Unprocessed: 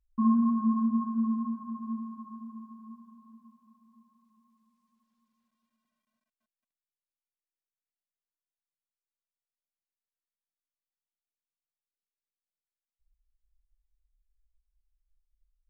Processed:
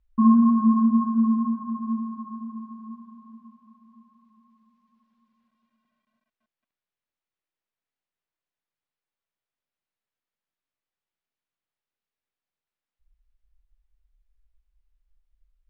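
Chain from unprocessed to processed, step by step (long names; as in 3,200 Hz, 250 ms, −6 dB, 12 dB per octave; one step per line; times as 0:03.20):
low-pass filter 3,200 Hz
level +7.5 dB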